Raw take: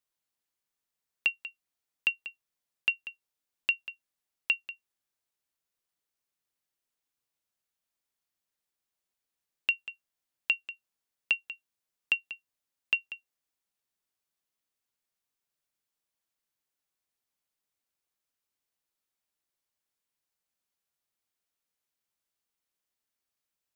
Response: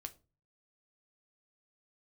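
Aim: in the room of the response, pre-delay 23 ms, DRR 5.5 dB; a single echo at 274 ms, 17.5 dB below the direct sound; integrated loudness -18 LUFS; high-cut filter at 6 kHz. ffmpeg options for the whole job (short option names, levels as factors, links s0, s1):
-filter_complex "[0:a]lowpass=6000,aecho=1:1:274:0.133,asplit=2[s0][s1];[1:a]atrim=start_sample=2205,adelay=23[s2];[s1][s2]afir=irnorm=-1:irlink=0,volume=0.891[s3];[s0][s3]amix=inputs=2:normalize=0,volume=4.73"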